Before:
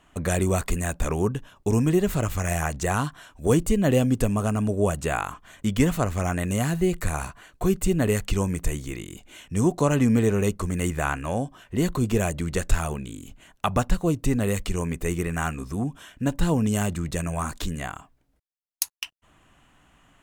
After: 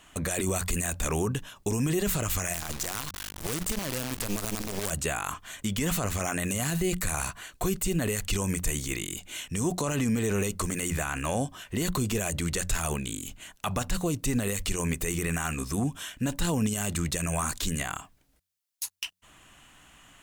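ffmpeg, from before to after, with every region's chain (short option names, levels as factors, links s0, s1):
-filter_complex "[0:a]asettb=1/sr,asplit=3[s0][s1][s2];[s0]atrim=end=2.544[s3];[s1]atrim=start=2.54:end=4.91,asetpts=PTS-STARTPTS,afade=t=in:d=0.004:c=qsin,afade=t=out:st=2.366:d=0.004:c=qsin,aeval=exprs='val(0)+0.00708*(sin(2*PI*50*n/s)+sin(2*PI*2*50*n/s)/2+sin(2*PI*3*50*n/s)/3+sin(2*PI*4*50*n/s)/4+sin(2*PI*5*50*n/s)/5)':c=same,acrusher=bits=4:dc=4:mix=0:aa=0.000001[s4];[s2]atrim=start=4.906[s5];[s3][s4]acrossfade=d=0.004:c1=hsin:c2=qsin[s6];[s6][s5]acrossfade=d=0.004:c1=qsin:c2=hsin,highshelf=f=2000:g=11.5,bandreject=f=89.97:t=h:w=4,bandreject=f=179.94:t=h:w=4,alimiter=limit=0.126:level=0:latency=1:release=29"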